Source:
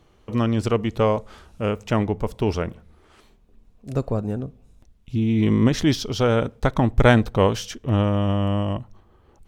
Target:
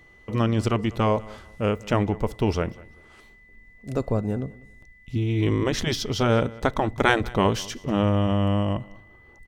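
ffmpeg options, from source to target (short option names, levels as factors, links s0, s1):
-af "afftfilt=real='re*lt(hypot(re,im),0.891)':imag='im*lt(hypot(re,im),0.891)':win_size=1024:overlap=0.75,aecho=1:1:194|388:0.0794|0.0199,aeval=exprs='val(0)+0.00251*sin(2*PI*2000*n/s)':c=same"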